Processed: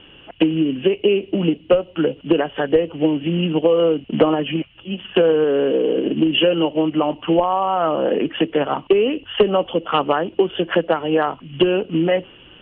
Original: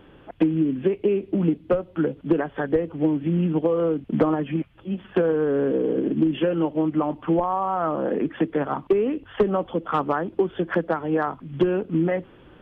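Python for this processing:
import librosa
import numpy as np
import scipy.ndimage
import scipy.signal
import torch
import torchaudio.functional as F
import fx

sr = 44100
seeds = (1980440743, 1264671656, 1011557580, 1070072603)

y = fx.highpass(x, sr, hz=180.0, slope=6, at=(5.44, 6.06))
y = fx.dynamic_eq(y, sr, hz=560.0, q=0.9, threshold_db=-35.0, ratio=4.0, max_db=7)
y = fx.lowpass_res(y, sr, hz=2900.0, q=15.0)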